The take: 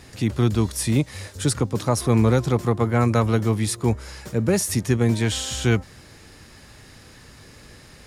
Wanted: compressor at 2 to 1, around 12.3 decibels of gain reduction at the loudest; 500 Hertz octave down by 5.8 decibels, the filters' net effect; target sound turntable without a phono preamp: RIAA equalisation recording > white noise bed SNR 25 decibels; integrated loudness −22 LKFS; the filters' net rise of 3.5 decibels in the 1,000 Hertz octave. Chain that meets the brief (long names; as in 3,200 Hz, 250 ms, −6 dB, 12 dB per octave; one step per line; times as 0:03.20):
parametric band 500 Hz −4.5 dB
parametric band 1,000 Hz +5.5 dB
downward compressor 2 to 1, threshold −38 dBFS
RIAA equalisation recording
white noise bed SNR 25 dB
level +8.5 dB